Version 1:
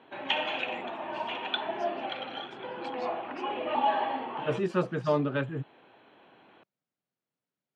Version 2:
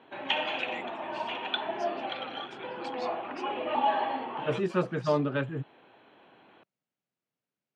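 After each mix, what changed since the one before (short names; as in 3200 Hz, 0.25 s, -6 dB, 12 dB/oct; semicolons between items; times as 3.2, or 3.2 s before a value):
first voice +6.0 dB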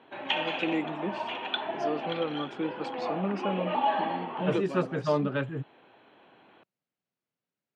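first voice: remove HPF 1400 Hz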